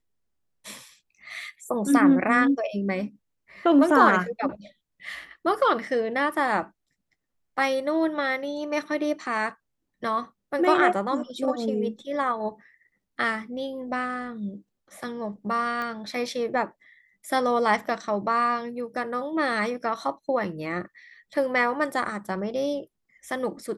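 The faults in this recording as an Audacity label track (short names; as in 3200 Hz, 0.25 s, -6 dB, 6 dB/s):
15.820000	15.820000	pop -20 dBFS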